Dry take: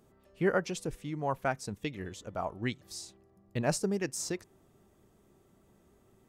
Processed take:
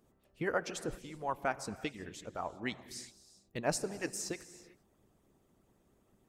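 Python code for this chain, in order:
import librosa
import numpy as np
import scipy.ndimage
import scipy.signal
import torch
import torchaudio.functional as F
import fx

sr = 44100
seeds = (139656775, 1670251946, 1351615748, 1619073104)

y = fx.rev_gated(x, sr, seeds[0], gate_ms=410, shape='flat', drr_db=9.5)
y = fx.hpss(y, sr, part='harmonic', gain_db=-13)
y = y * 10.0 ** (-1.0 / 20.0)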